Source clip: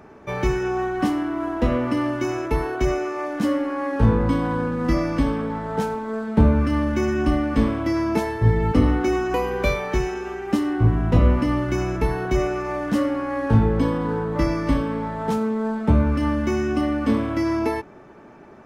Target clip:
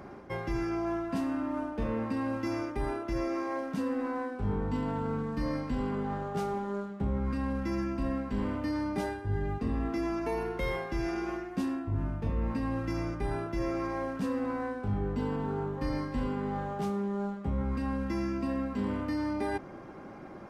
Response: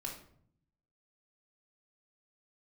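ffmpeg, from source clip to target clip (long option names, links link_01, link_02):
-af "areverse,acompressor=threshold=-31dB:ratio=4,areverse,asetrate=40131,aresample=44100"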